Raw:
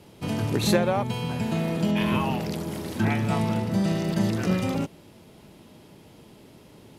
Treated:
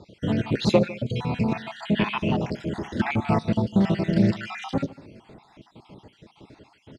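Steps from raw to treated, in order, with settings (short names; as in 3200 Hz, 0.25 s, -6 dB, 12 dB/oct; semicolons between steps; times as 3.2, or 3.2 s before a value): random spectral dropouts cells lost 55%; air absorption 120 m; outdoor echo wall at 26 m, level -19 dB; on a send at -19 dB: reverb RT60 0.40 s, pre-delay 3 ms; on the sum: Doppler distortion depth 0.14 ms; gain +5 dB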